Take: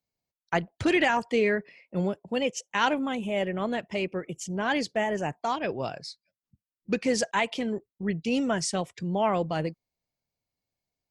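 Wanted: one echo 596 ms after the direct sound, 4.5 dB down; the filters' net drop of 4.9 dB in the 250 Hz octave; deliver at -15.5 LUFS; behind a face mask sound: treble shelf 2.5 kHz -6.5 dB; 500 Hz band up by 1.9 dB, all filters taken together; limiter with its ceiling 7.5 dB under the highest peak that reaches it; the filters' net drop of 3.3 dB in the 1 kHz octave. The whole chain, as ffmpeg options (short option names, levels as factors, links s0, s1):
-af "equalizer=f=250:t=o:g=-8.5,equalizer=f=500:t=o:g=6.5,equalizer=f=1000:t=o:g=-5.5,alimiter=limit=0.112:level=0:latency=1,highshelf=f=2500:g=-6.5,aecho=1:1:596:0.596,volume=5.62"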